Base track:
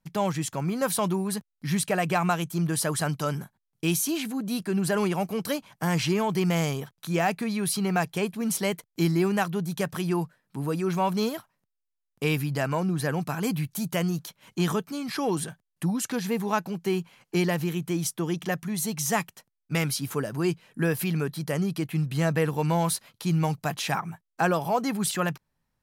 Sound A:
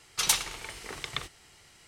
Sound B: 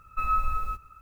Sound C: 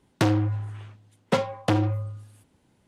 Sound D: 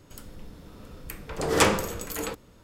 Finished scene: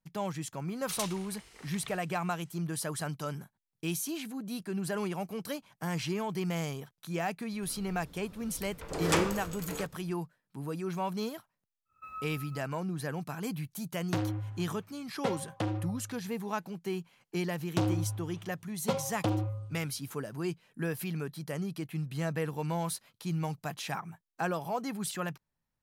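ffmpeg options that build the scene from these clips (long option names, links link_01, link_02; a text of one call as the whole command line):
ffmpeg -i bed.wav -i cue0.wav -i cue1.wav -i cue2.wav -i cue3.wav -filter_complex "[3:a]asplit=2[link_01][link_02];[0:a]volume=-8.5dB[link_03];[2:a]highpass=120[link_04];[link_02]equalizer=frequency=1800:width_type=o:width=0.62:gain=-8[link_05];[1:a]atrim=end=1.87,asetpts=PTS-STARTPTS,volume=-12.5dB,afade=type=in:duration=0.004:curve=hsin,afade=type=out:start_time=1.866:duration=0.004:curve=hsin,adelay=700[link_06];[4:a]atrim=end=2.63,asetpts=PTS-STARTPTS,volume=-7.5dB,afade=type=in:duration=0.004:curve=hsin,afade=type=out:start_time=2.626:duration=0.004:curve=hsin,adelay=7520[link_07];[link_04]atrim=end=1.01,asetpts=PTS-STARTPTS,volume=-16.5dB,afade=type=in:duration=0.1,afade=type=out:start_time=0.91:duration=0.1,adelay=11850[link_08];[link_01]atrim=end=2.87,asetpts=PTS-STARTPTS,volume=-10.5dB,afade=type=in:duration=0.004:curve=hsin,afade=type=out:start_time=2.866:duration=0.004:curve=hsin,adelay=13920[link_09];[link_05]atrim=end=2.87,asetpts=PTS-STARTPTS,volume=-7.5dB,afade=type=in:duration=0.004:curve=hsin,afade=type=out:start_time=2.866:duration=0.004:curve=hsin,adelay=17560[link_10];[link_03][link_06][link_07][link_08][link_09][link_10]amix=inputs=6:normalize=0" out.wav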